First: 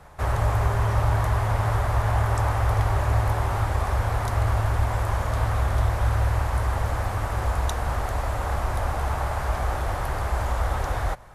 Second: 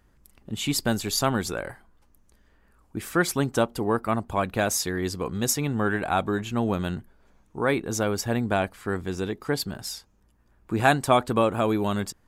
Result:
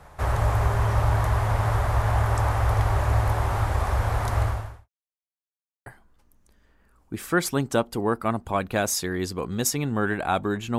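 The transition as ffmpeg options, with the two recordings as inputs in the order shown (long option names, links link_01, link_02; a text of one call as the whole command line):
ffmpeg -i cue0.wav -i cue1.wav -filter_complex "[0:a]apad=whole_dur=10.78,atrim=end=10.78,asplit=2[link_01][link_02];[link_01]atrim=end=4.89,asetpts=PTS-STARTPTS,afade=type=out:start_time=4.42:duration=0.47:curve=qua[link_03];[link_02]atrim=start=4.89:end=5.86,asetpts=PTS-STARTPTS,volume=0[link_04];[1:a]atrim=start=1.69:end=6.61,asetpts=PTS-STARTPTS,afade=type=in:duration=0.004:curve=hsin[link_05];[link_03][link_04][link_05]concat=n=3:v=0:a=1" out.wav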